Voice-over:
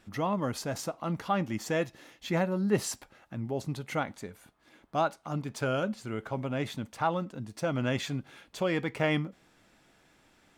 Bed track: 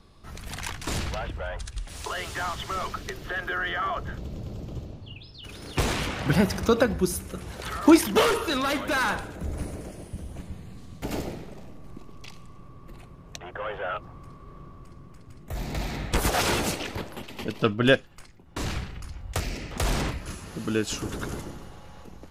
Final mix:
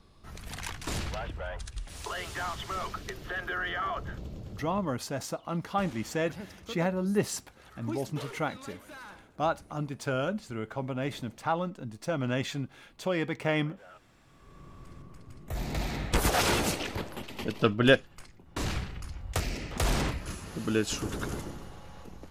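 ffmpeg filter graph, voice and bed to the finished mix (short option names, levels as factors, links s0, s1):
-filter_complex "[0:a]adelay=4450,volume=0.944[s0];[1:a]volume=6.31,afade=t=out:st=4.21:d=0.85:silence=0.133352,afade=t=in:st=14.25:d=0.66:silence=0.1[s1];[s0][s1]amix=inputs=2:normalize=0"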